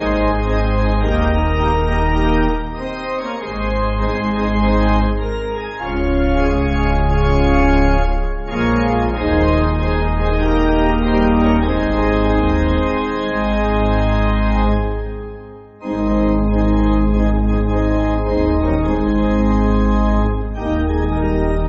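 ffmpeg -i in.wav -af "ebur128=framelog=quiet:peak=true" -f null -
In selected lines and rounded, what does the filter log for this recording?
Integrated loudness:
  I:         -17.1 LUFS
  Threshold: -27.2 LUFS
Loudness range:
  LRA:         2.7 LU
  Threshold: -37.2 LUFS
  LRA low:   -18.7 LUFS
  LRA high:  -16.0 LUFS
True peak:
  Peak:       -2.8 dBFS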